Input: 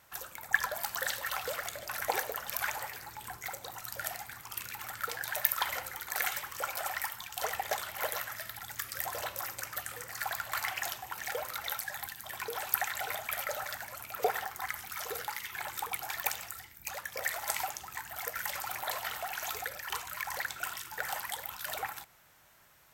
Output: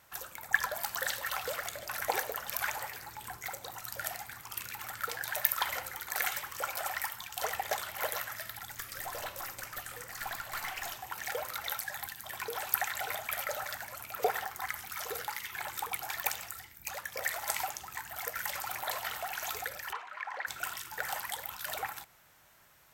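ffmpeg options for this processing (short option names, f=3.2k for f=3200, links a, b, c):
-filter_complex "[0:a]asettb=1/sr,asplit=3[a][b][c];[a]atrim=end=8.654[d];[b]atrim=start=8.65:end=11.01,asetpts=PTS-STARTPTS,afade=t=in:d=0.004:c=qsin,afade=t=out:st=2.356:d=0.004:c=qsin,aeval=exprs='(tanh(35.5*val(0)+0.3)-tanh(0.3))/35.5':c=same[e];[c]atrim=start=11.006[f];[d][e]acrossfade=d=0.004:c1=hsin:c2=qsin[g];[g][f]acrossfade=d=0.004:c1=qsin:c2=hsin,asplit=3[h][i][j];[h]afade=t=out:st=19.91:d=0.02[k];[i]highpass=430,lowpass=2.2k,afade=t=in:st=19.91:d=0.02,afade=t=out:st=20.46:d=0.02[l];[j]afade=t=in:st=20.46:d=0.02[m];[k][l][m]amix=inputs=3:normalize=0"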